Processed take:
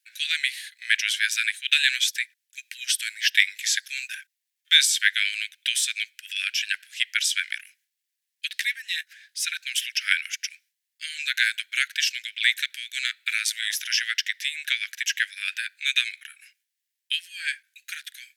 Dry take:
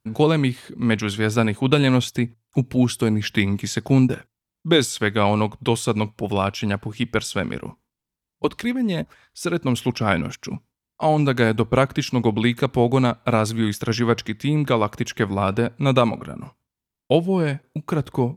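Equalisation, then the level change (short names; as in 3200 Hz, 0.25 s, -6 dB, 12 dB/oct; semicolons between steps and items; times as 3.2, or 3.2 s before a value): steep high-pass 1600 Hz 96 dB/oct; +6.5 dB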